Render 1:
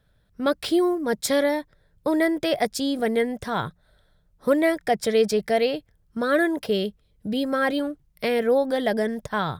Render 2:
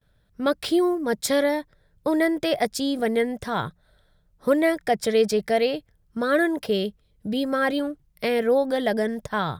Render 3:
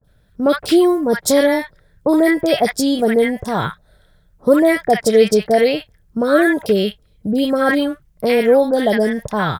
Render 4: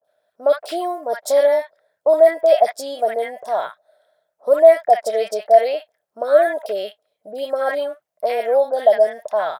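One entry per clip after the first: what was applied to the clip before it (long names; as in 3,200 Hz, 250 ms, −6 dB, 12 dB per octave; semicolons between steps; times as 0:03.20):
noise gate with hold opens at −58 dBFS
three-band delay without the direct sound lows, highs, mids 30/60 ms, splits 1,100/3,600 Hz; level +8.5 dB
high-pass with resonance 640 Hz, resonance Q 7.9; level −10 dB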